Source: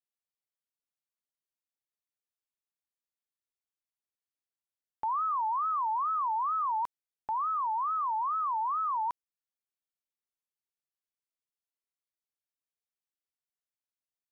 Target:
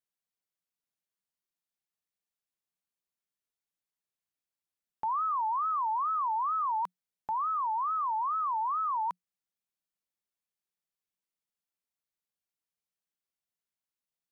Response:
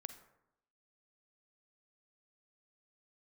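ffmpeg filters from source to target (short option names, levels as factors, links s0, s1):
-af "equalizer=f=180:t=o:w=0.22:g=10"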